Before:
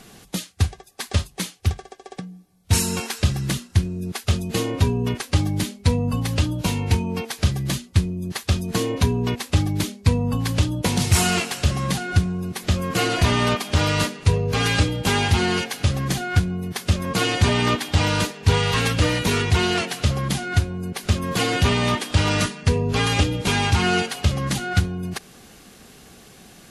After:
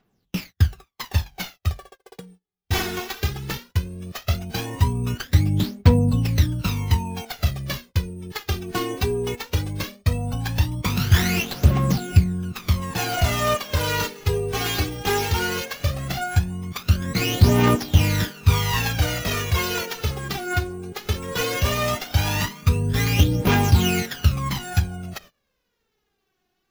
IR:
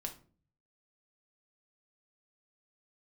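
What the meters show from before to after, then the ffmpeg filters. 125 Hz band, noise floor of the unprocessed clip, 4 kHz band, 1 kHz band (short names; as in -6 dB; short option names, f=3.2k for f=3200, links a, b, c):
0.0 dB, -48 dBFS, -3.0 dB, -1.5 dB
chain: -af "acrusher=samples=5:mix=1:aa=0.000001,agate=range=-25dB:threshold=-39dB:ratio=16:detection=peak,aphaser=in_gain=1:out_gain=1:delay=2.8:decay=0.66:speed=0.17:type=triangular,volume=-4.5dB"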